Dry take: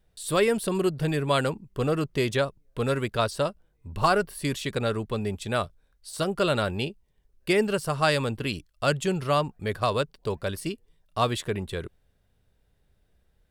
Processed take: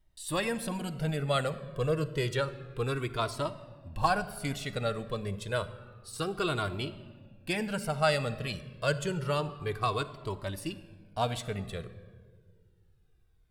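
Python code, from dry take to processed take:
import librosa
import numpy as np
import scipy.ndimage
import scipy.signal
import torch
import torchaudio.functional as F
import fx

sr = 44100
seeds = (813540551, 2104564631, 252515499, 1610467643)

y = fx.room_shoebox(x, sr, seeds[0], volume_m3=2000.0, walls='mixed', distance_m=0.54)
y = fx.comb_cascade(y, sr, direction='falling', hz=0.29)
y = F.gain(torch.from_numpy(y), -1.0).numpy()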